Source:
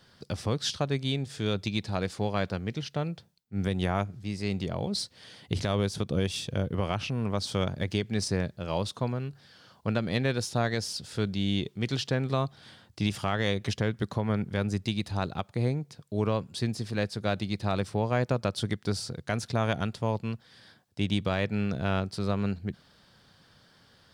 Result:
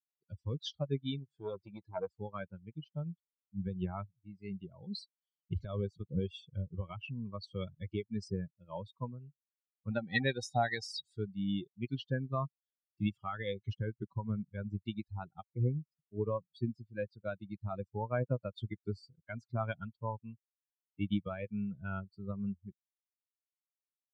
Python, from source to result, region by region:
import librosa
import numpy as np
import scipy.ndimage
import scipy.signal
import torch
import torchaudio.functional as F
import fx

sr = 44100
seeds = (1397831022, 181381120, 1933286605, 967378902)

y = fx.chain(x, sr, fx.peak_eq(hz=620.0, db=6.5, octaves=2.2),
    fx.transformer_sat(knee_hz=1000.0), at=(1.19, 2.08))
y = fx.chain(y, sr, fx.high_shelf(hz=3800.0, db=9.0),
    fx.small_body(hz=(770.0, 1900.0, 3800.0), ring_ms=75, db=16), at=(9.9, 11.18))
y = fx.bin_expand(y, sr, power=3.0)
y = scipy.signal.sosfilt(scipy.signal.bessel(2, 3000.0, 'lowpass', norm='mag', fs=sr, output='sos'), y)